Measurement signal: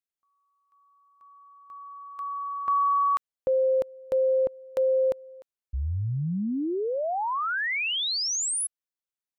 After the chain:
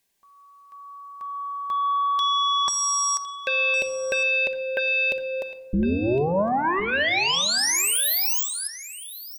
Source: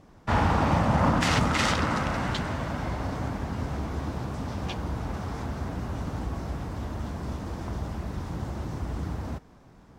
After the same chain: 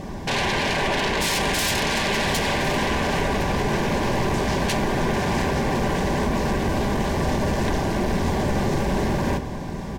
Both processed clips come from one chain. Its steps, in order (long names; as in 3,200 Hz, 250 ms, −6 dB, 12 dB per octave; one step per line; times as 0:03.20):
in parallel at −2.5 dB: downward compressor, threshold −38 dBFS
on the sum: brickwall limiter −20 dBFS
sine wavefolder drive 12 dB, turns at −20 dBFS
Butterworth band-reject 1,300 Hz, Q 4.3
on a send: single-tap delay 1,059 ms −15.5 dB
on the sum: rectangular room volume 3,700 cubic metres, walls furnished, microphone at 1.2 metres